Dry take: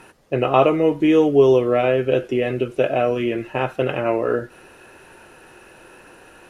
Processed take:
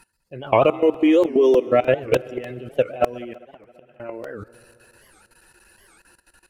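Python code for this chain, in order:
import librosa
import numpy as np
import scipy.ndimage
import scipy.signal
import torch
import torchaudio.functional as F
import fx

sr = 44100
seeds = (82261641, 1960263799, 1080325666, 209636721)

y = fx.bin_expand(x, sr, power=1.5)
y = fx.steep_highpass(y, sr, hz=220.0, slope=72, at=(0.71, 1.67))
y = fx.level_steps(y, sr, step_db=20)
y = fx.gate_flip(y, sr, shuts_db=-35.0, range_db=-25, at=(3.33, 4.0))
y = fx.echo_heads(y, sr, ms=67, heads='second and third', feedback_pct=66, wet_db=-22.0)
y = fx.buffer_crackle(y, sr, first_s=0.94, period_s=0.3, block=128, kind='repeat')
y = fx.record_warp(y, sr, rpm=78.0, depth_cents=250.0)
y = F.gain(torch.from_numpy(y), 6.0).numpy()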